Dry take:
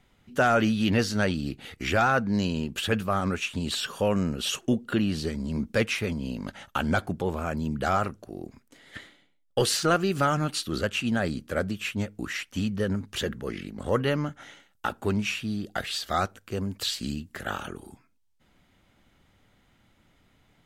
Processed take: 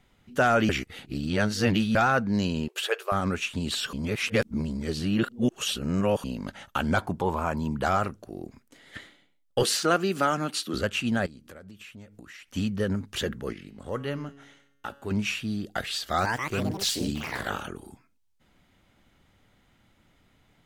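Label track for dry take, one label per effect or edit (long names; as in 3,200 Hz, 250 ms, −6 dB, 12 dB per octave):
0.690000	1.950000	reverse
2.680000	3.120000	linear-phase brick-wall high-pass 350 Hz
3.930000	6.240000	reverse
6.970000	7.870000	parametric band 960 Hz +12.5 dB 0.43 octaves
9.630000	10.740000	high-pass filter 180 Hz 24 dB per octave
11.260000	12.520000	downward compressor 8 to 1, threshold −43 dBFS
13.530000	15.110000	tuned comb filter 140 Hz, decay 0.98 s
16.030000	17.830000	delay with pitch and tempo change per echo 154 ms, each echo +4 semitones, echoes 3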